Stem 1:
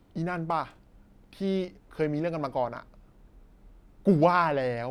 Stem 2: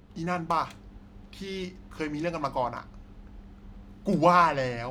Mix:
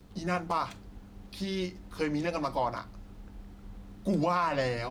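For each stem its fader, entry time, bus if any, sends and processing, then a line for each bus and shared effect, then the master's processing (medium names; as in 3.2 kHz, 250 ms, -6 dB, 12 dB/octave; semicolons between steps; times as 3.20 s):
-6.0 dB, 0.00 s, no send, resonant high shelf 3.1 kHz +12 dB, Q 1.5; compression, threshold -28 dBFS, peak gain reduction 12 dB
-0.5 dB, 7.4 ms, polarity flipped, no send, none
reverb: none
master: peak limiter -19 dBFS, peak gain reduction 10.5 dB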